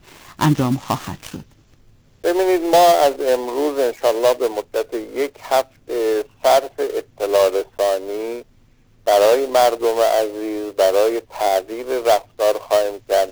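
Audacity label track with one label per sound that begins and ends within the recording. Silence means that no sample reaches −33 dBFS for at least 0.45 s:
2.240000	8.420000	sound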